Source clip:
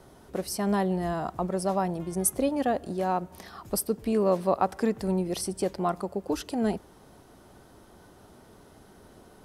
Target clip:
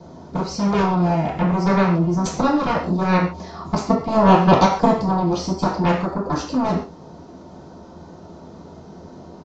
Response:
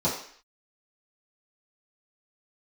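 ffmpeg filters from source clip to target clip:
-filter_complex "[0:a]aeval=exprs='0.299*(cos(1*acos(clip(val(0)/0.299,-1,1)))-cos(1*PI/2))+0.0944*(cos(2*acos(clip(val(0)/0.299,-1,1)))-cos(2*PI/2))+0.0944*(cos(7*acos(clip(val(0)/0.299,-1,1)))-cos(7*PI/2))':c=same[s0];[1:a]atrim=start_sample=2205,afade=t=out:st=0.2:d=0.01,atrim=end_sample=9261[s1];[s0][s1]afir=irnorm=-1:irlink=0,aresample=16000,aresample=44100,volume=0.596"

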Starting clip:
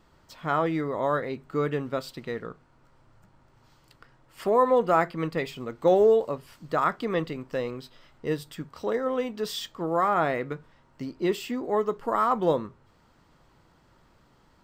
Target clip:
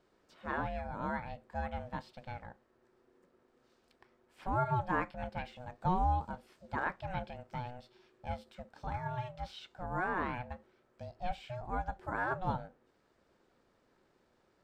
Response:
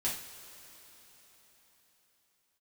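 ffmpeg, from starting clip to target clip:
-filter_complex "[0:a]acrossover=split=3800[s0][s1];[s1]acompressor=threshold=0.00158:ratio=4:attack=1:release=60[s2];[s0][s2]amix=inputs=2:normalize=0,lowpass=12000,aeval=exprs='val(0)*sin(2*PI*370*n/s)':c=same,volume=0.398"

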